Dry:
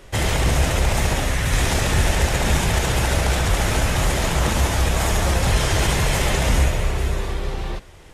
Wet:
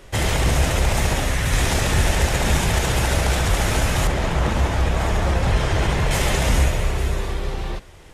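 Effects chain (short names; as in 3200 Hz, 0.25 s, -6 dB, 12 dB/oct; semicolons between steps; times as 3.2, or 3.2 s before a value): 4.07–6.11 LPF 2300 Hz 6 dB/oct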